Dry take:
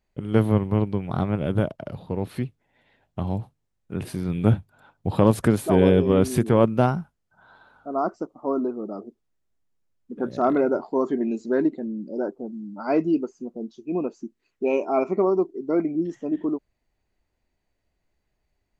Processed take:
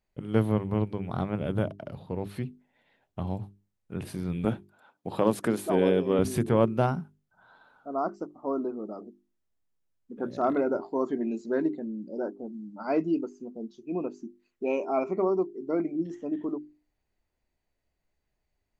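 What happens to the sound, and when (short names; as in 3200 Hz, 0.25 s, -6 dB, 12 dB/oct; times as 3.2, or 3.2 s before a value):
4.45–6.19 HPF 210 Hz
whole clip: notches 50/100/150/200/250/300/350/400 Hz; gain -4.5 dB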